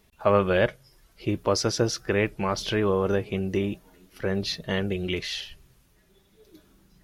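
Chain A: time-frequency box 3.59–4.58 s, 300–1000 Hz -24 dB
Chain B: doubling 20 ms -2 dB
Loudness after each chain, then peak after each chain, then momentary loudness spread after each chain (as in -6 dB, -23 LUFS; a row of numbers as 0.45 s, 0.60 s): -26.5 LUFS, -24.0 LUFS; -7.0 dBFS, -4.5 dBFS; 11 LU, 11 LU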